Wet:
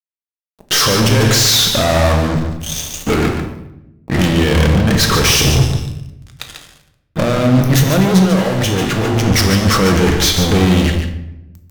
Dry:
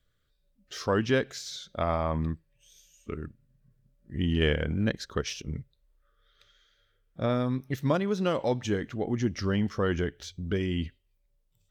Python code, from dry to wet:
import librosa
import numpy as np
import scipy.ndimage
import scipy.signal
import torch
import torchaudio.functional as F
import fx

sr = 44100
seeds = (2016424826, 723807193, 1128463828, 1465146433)

y = fx.diode_clip(x, sr, knee_db=-29.0)
y = fx.low_shelf(y, sr, hz=310.0, db=-11.5, at=(3.1, 4.29))
y = fx.over_compress(y, sr, threshold_db=-37.0, ratio=-1.0)
y = fx.comb_fb(y, sr, f0_hz=110.0, decay_s=1.6, harmonics='all', damping=0.0, mix_pct=60)
y = fx.fuzz(y, sr, gain_db=54.0, gate_db=-60.0)
y = fx.comb_fb(y, sr, f0_hz=51.0, decay_s=0.29, harmonics='all', damping=0.0, mix_pct=70, at=(8.25, 9.17))
y = y + 10.0 ** (-7.5 / 20.0) * np.pad(y, (int(144 * sr / 1000.0), 0))[:len(y)]
y = fx.room_shoebox(y, sr, seeds[0], volume_m3=330.0, walls='mixed', distance_m=0.59)
y = y * librosa.db_to_amplitude(1.0)